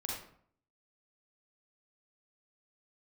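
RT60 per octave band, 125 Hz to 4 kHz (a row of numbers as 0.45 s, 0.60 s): 0.70 s, 0.70 s, 0.60 s, 0.60 s, 0.50 s, 0.40 s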